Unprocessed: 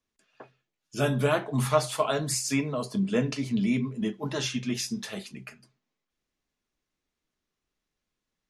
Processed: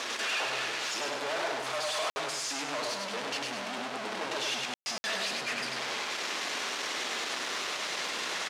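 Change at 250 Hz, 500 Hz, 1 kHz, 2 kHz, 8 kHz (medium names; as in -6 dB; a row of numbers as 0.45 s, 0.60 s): -15.0 dB, -6.0 dB, +1.0 dB, +6.0 dB, 0.0 dB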